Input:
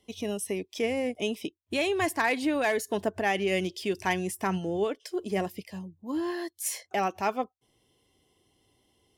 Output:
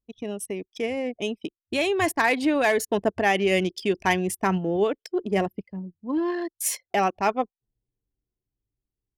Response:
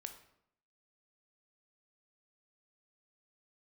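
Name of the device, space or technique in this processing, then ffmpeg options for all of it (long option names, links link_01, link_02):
voice memo with heavy noise removal: -af "anlmdn=1.58,dynaudnorm=framelen=710:gausssize=5:maxgain=5.5dB"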